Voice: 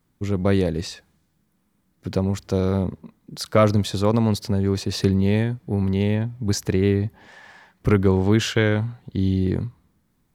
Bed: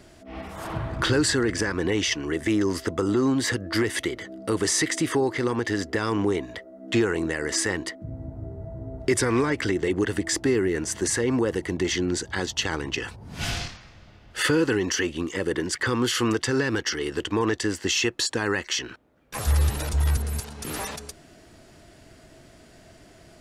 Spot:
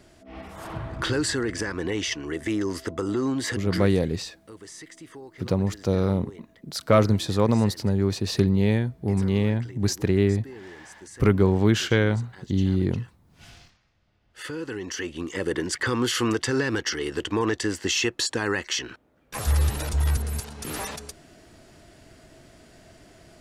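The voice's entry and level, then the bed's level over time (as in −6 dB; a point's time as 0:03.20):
3.35 s, −1.5 dB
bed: 0:03.73 −3.5 dB
0:03.96 −20 dB
0:13.97 −20 dB
0:15.44 −0.5 dB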